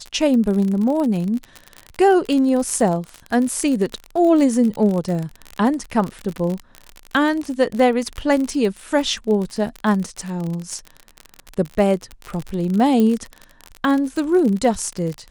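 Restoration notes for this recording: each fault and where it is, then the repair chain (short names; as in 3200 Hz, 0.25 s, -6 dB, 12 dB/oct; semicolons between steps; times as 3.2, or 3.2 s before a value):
crackle 43/s -23 dBFS
13 pop -9 dBFS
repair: de-click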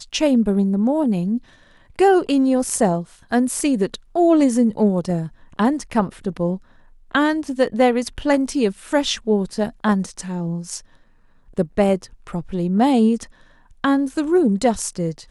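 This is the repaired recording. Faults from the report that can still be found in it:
none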